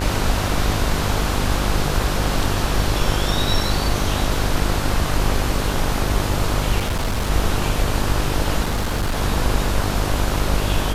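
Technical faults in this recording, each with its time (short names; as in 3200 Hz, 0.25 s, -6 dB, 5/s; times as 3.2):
buzz 50 Hz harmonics 31 -24 dBFS
6.78–7.31 clipped -17.5 dBFS
8.64–9.18 clipped -17 dBFS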